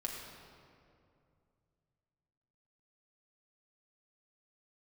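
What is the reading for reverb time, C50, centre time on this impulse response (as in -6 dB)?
2.5 s, 1.5 dB, 86 ms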